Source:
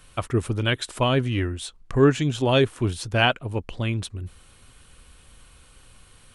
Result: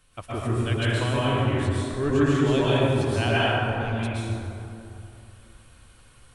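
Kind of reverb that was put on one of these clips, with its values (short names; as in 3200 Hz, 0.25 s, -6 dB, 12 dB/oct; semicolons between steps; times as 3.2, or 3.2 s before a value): plate-style reverb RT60 2.8 s, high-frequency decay 0.45×, pre-delay 0.105 s, DRR -9.5 dB; gain -10.5 dB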